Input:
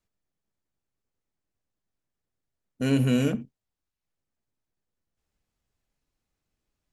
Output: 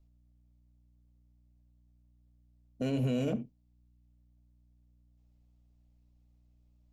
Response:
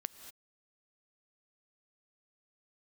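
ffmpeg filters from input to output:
-filter_complex "[0:a]equalizer=f=630:t=o:w=0.67:g=8,equalizer=f=1600:t=o:w=0.67:g=-8,equalizer=f=10000:t=o:w=0.67:g=-11[s0];[1:a]atrim=start_sample=2205,atrim=end_sample=3087[s1];[s0][s1]afir=irnorm=-1:irlink=0,aeval=exprs='val(0)+0.000398*(sin(2*PI*60*n/s)+sin(2*PI*2*60*n/s)/2+sin(2*PI*3*60*n/s)/3+sin(2*PI*4*60*n/s)/4+sin(2*PI*5*60*n/s)/5)':c=same,acrossover=split=110|2200[s2][s3][s4];[s2]acompressor=mode=upward:threshold=0.001:ratio=2.5[s5];[s5][s3][s4]amix=inputs=3:normalize=0,alimiter=limit=0.0631:level=0:latency=1:release=12"

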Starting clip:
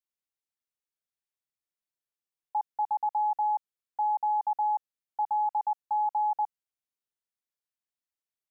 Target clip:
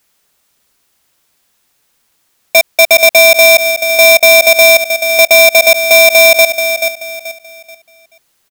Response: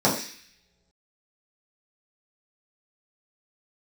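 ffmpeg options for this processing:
-filter_complex "[0:a]asoftclip=type=hard:threshold=0.0562,asplit=2[s0][s1];[s1]adelay=432,lowpass=f=820:p=1,volume=0.15,asplit=2[s2][s3];[s3]adelay=432,lowpass=f=820:p=1,volume=0.43,asplit=2[s4][s5];[s5]adelay=432,lowpass=f=820:p=1,volume=0.43,asplit=2[s6][s7];[s7]adelay=432,lowpass=f=820:p=1,volume=0.43[s8];[s2][s4][s6][s8]amix=inputs=4:normalize=0[s9];[s0][s9]amix=inputs=2:normalize=0,alimiter=level_in=56.2:limit=0.891:release=50:level=0:latency=1,aeval=exprs='val(0)*sgn(sin(2*PI*1500*n/s))':c=same,volume=0.891"

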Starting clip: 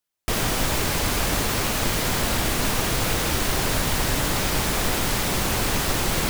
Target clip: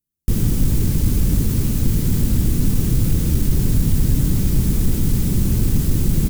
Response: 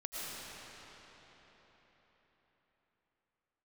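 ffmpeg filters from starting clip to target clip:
-filter_complex "[0:a]firequalizer=gain_entry='entry(170,0);entry(660,-28);entry(7100,-16);entry(14000,-11)':delay=0.05:min_phase=1,asplit=2[s0][s1];[s1]asoftclip=type=hard:threshold=0.0794,volume=0.562[s2];[s0][s2]amix=inputs=2:normalize=0,volume=2.37"

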